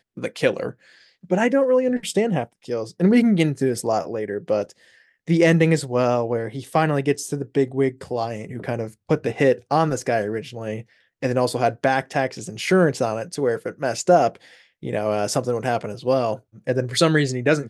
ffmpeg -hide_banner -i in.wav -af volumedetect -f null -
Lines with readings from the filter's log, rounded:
mean_volume: -21.7 dB
max_volume: -3.2 dB